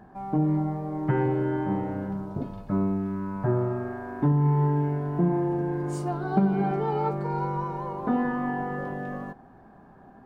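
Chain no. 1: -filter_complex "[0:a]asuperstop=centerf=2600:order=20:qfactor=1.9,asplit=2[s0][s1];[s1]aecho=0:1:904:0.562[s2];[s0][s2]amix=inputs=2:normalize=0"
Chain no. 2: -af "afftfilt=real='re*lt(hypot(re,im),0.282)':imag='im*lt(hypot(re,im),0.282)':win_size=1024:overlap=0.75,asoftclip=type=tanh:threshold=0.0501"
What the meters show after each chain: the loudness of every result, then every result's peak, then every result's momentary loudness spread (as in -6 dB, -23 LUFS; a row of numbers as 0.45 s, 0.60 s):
-26.5 LUFS, -34.5 LUFS; -9.0 dBFS, -26.5 dBFS; 8 LU, 5 LU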